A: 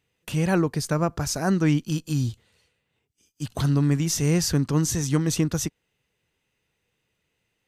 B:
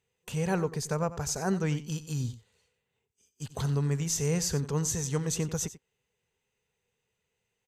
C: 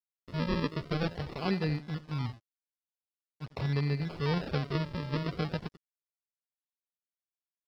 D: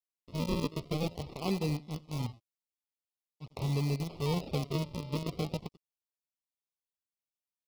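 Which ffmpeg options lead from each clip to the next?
-af "superequalizer=6b=0.398:7b=1.78:9b=1.41:15b=1.78,aecho=1:1:91:0.178,volume=0.447"
-af "aresample=11025,acrusher=samples=10:mix=1:aa=0.000001:lfo=1:lforange=10:lforate=0.45,aresample=44100,aeval=exprs='sgn(val(0))*max(abs(val(0))-0.00188,0)':c=same,volume=0.841"
-filter_complex "[0:a]asplit=2[s0][s1];[s1]acrusher=bits=4:mix=0:aa=0.000001,volume=0.447[s2];[s0][s2]amix=inputs=2:normalize=0,asuperstop=centerf=1600:order=4:qfactor=1.5,volume=0.596"

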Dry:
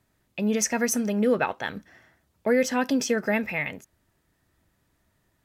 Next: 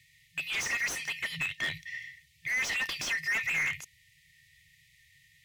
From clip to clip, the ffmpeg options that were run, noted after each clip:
-filter_complex "[0:a]afftfilt=real='re*(1-between(b*sr/4096,170,1800))':imag='im*(1-between(b*sr/4096,170,1800))':win_size=4096:overlap=0.75,equalizer=f=150:t=o:w=2.6:g=-5,asplit=2[s0][s1];[s1]highpass=f=720:p=1,volume=63.1,asoftclip=type=tanh:threshold=0.299[s2];[s0][s2]amix=inputs=2:normalize=0,lowpass=f=1700:p=1,volume=0.501,volume=0.398"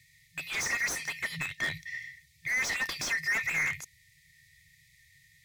-af "equalizer=f=2900:t=o:w=0.39:g=-11.5,volume=1.33"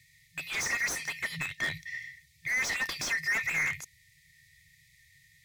-af anull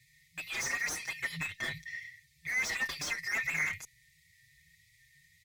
-filter_complex "[0:a]asplit=2[s0][s1];[s1]adelay=5.7,afreqshift=1.8[s2];[s0][s2]amix=inputs=2:normalize=1"

